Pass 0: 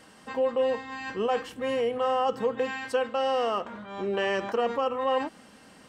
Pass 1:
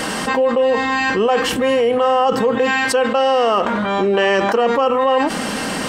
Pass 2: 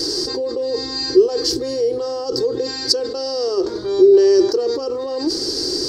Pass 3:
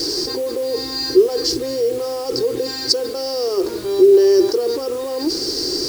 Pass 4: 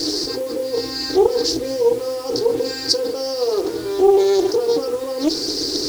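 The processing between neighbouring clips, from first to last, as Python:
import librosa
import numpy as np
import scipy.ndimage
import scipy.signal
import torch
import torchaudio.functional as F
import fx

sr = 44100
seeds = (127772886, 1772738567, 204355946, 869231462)

y1 = fx.peak_eq(x, sr, hz=95.0, db=-13.0, octaves=0.45)
y1 = fx.env_flatten(y1, sr, amount_pct=70)
y1 = y1 * 10.0 ** (8.5 / 20.0)
y2 = fx.curve_eq(y1, sr, hz=(120.0, 210.0, 360.0, 600.0, 1100.0, 1700.0, 2900.0, 4700.0, 8600.0, 12000.0), db=(0, -24, 13, -15, -19, -19, -23, 15, -8, -6))
y3 = fx.quant_dither(y2, sr, seeds[0], bits=6, dither='none')
y4 = fx.rev_fdn(y3, sr, rt60_s=0.38, lf_ratio=0.8, hf_ratio=0.45, size_ms=20.0, drr_db=4.5)
y4 = fx.doppler_dist(y4, sr, depth_ms=0.32)
y4 = y4 * 10.0 ** (-1.5 / 20.0)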